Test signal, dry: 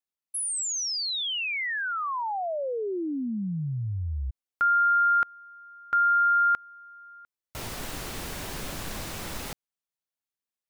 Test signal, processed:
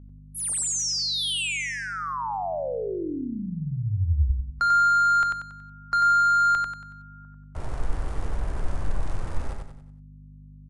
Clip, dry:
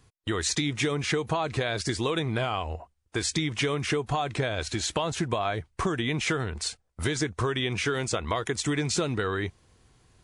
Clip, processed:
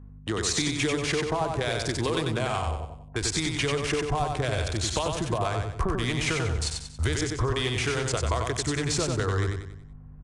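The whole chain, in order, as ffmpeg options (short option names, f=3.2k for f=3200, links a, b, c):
-filter_complex "[0:a]asubboost=boost=6.5:cutoff=70,acrossover=split=100|440|1600[a][b][c][d];[d]acrusher=bits=4:mix=0:aa=0.5[e];[a][b][c][e]amix=inputs=4:normalize=0,aeval=exprs='val(0)+0.00631*(sin(2*PI*50*n/s)+sin(2*PI*2*50*n/s)/2+sin(2*PI*3*50*n/s)/3+sin(2*PI*4*50*n/s)/4+sin(2*PI*5*50*n/s)/5)':c=same,aecho=1:1:93|186|279|372|465:0.631|0.259|0.106|0.0435|0.0178" -ar 22050 -c:a libvorbis -b:a 64k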